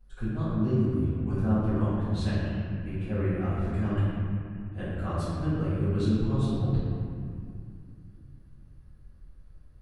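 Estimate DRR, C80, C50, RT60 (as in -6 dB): -15.5 dB, -2.0 dB, -4.0 dB, 2.3 s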